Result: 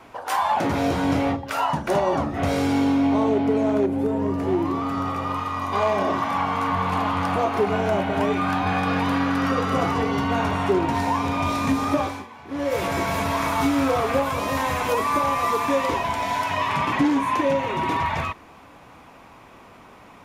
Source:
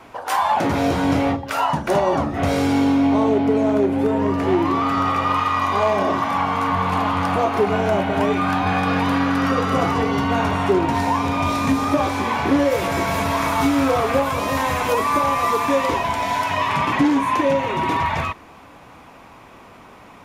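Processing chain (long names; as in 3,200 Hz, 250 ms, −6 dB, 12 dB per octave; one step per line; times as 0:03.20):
0:03.86–0:05.73: parametric band 2,300 Hz −7 dB 2.9 octaves
0:11.97–0:12.78: duck −18.5 dB, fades 0.30 s
level −3 dB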